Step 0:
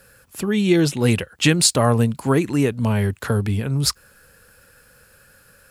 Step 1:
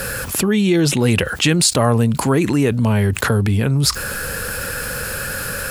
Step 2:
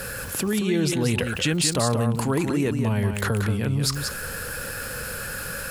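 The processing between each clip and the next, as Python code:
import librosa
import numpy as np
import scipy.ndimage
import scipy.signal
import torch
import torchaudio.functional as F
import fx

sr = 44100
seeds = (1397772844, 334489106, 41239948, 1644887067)

y1 = fx.env_flatten(x, sr, amount_pct=70)
y1 = F.gain(torch.from_numpy(y1), -1.0).numpy()
y2 = y1 + 10.0 ** (-6.0 / 20.0) * np.pad(y1, (int(182 * sr / 1000.0), 0))[:len(y1)]
y2 = F.gain(torch.from_numpy(y2), -8.0).numpy()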